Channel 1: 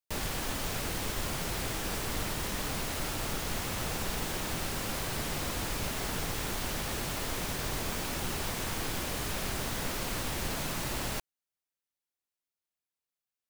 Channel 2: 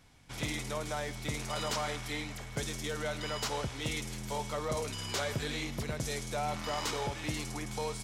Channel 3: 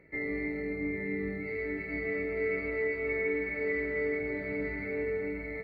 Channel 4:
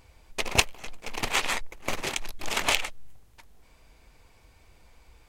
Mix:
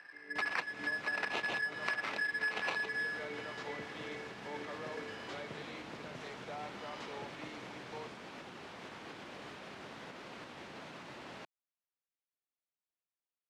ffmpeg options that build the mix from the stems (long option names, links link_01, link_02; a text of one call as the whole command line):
ffmpeg -i stem1.wav -i stem2.wav -i stem3.wav -i stem4.wav -filter_complex "[0:a]alimiter=level_in=4.5dB:limit=-24dB:level=0:latency=1:release=265,volume=-4.5dB,adelay=250,volume=-5.5dB[link_01];[1:a]adelay=150,volume=-10dB[link_02];[2:a]tremolo=f=2.4:d=0.74,volume=-13.5dB[link_03];[3:a]lowpass=1500,aeval=exprs='val(0)*sgn(sin(2*PI*1700*n/s))':channel_layout=same,volume=2dB[link_04];[link_01][link_02][link_03][link_04]amix=inputs=4:normalize=0,highpass=200,lowpass=3200,acompressor=threshold=-33dB:ratio=6" out.wav